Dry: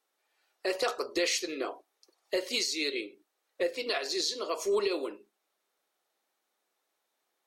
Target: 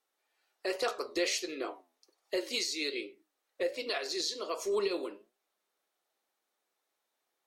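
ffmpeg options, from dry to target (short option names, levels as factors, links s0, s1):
-af "flanger=delay=7.2:depth=5:regen=82:speed=1.3:shape=triangular,volume=1.19"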